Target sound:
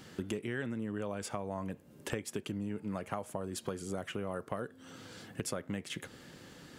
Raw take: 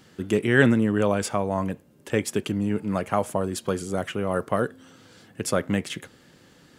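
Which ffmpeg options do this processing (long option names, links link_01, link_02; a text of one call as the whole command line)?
ffmpeg -i in.wav -af "acompressor=threshold=-36dB:ratio=8,volume=1.5dB" out.wav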